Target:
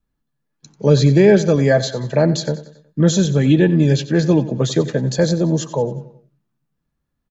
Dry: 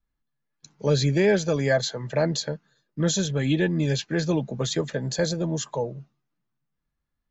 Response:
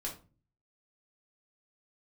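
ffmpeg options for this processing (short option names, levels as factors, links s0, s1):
-filter_complex "[0:a]equalizer=f=220:w=0.37:g=7.5,bandreject=f=2100:w=27,asplit=2[s0][s1];[s1]aecho=0:1:92|184|276|368:0.168|0.0772|0.0355|0.0163[s2];[s0][s2]amix=inputs=2:normalize=0,volume=1.41"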